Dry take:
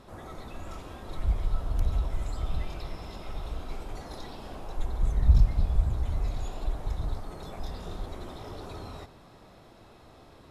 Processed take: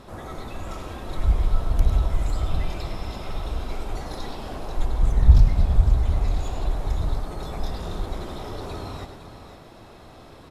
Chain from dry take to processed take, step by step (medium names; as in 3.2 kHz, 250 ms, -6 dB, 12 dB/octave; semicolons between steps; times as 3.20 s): 4.87–6.67 s: self-modulated delay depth 0.47 ms; multi-tap echo 103/507 ms -10/-11 dB; trim +6.5 dB